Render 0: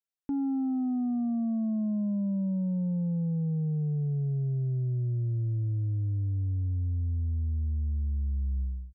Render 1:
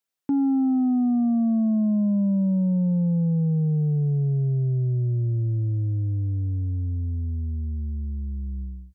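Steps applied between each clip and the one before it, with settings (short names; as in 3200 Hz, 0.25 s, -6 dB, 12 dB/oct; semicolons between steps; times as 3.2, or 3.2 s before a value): HPF 110 Hz 12 dB/oct; gain +8 dB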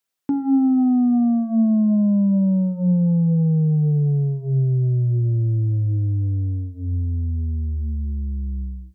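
de-hum 45.85 Hz, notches 20; gain +4.5 dB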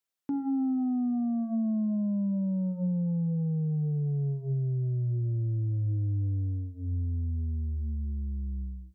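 limiter -17 dBFS, peak gain reduction 5 dB; gain -7.5 dB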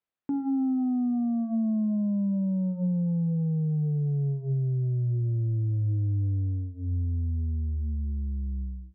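air absorption 390 m; gain +2.5 dB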